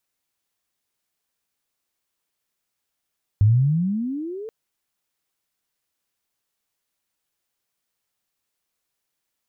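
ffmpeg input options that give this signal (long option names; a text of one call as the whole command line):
ffmpeg -f lavfi -i "aevalsrc='pow(10,(-11-20*t/1.08)/20)*sin(2*PI*98.7*1.08/(26.5*log(2)/12)*(exp(26.5*log(2)/12*t/1.08)-1))':duration=1.08:sample_rate=44100" out.wav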